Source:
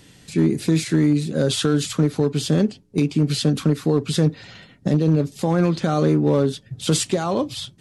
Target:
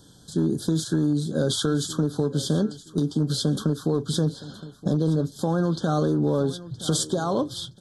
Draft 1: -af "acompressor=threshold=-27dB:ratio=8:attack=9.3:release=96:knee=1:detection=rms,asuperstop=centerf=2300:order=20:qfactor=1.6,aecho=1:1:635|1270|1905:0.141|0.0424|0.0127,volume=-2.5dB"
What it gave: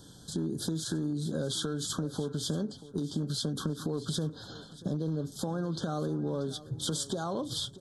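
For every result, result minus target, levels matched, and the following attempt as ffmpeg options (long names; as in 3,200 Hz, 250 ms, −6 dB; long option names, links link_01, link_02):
downward compressor: peak gain reduction +10 dB; echo 334 ms early
-af "acompressor=threshold=-15.5dB:ratio=8:attack=9.3:release=96:knee=1:detection=rms,asuperstop=centerf=2300:order=20:qfactor=1.6,aecho=1:1:635|1270|1905:0.141|0.0424|0.0127,volume=-2.5dB"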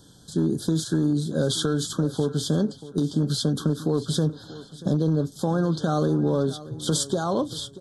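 echo 334 ms early
-af "acompressor=threshold=-15.5dB:ratio=8:attack=9.3:release=96:knee=1:detection=rms,asuperstop=centerf=2300:order=20:qfactor=1.6,aecho=1:1:969|1938|2907:0.141|0.0424|0.0127,volume=-2.5dB"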